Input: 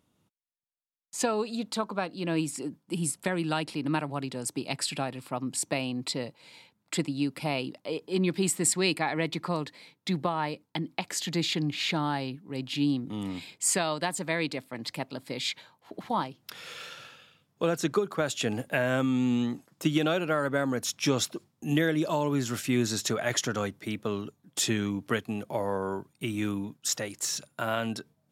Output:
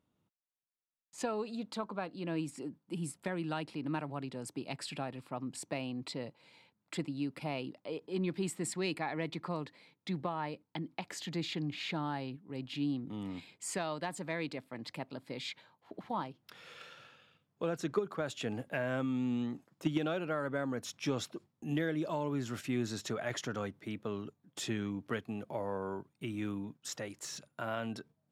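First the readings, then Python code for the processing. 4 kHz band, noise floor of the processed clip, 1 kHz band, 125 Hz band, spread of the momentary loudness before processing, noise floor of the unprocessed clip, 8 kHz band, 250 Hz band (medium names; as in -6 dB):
-11.0 dB, -82 dBFS, -8.0 dB, -7.0 dB, 10 LU, -74 dBFS, -14.5 dB, -7.0 dB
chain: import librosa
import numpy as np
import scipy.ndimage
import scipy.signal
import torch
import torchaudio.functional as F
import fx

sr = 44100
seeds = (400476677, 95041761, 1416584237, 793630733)

p1 = fx.high_shelf(x, sr, hz=4500.0, db=-11.0)
p2 = fx.level_steps(p1, sr, step_db=22)
p3 = p1 + F.gain(torch.from_numpy(p2), -3.0).numpy()
p4 = 10.0 ** (-10.5 / 20.0) * np.tanh(p3 / 10.0 ** (-10.5 / 20.0))
y = F.gain(torch.from_numpy(p4), -8.0).numpy()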